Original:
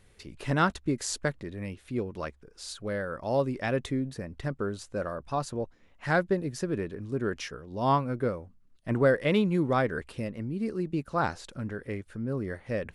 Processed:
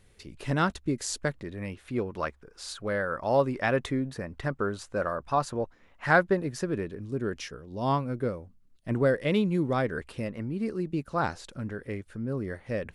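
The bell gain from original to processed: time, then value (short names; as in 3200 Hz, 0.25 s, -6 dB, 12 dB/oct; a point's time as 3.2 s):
bell 1200 Hz 2.1 oct
1.13 s -2 dB
1.85 s +6.5 dB
6.47 s +6.5 dB
7.01 s -3.5 dB
9.75 s -3.5 dB
10.51 s +7 dB
10.8 s -0.5 dB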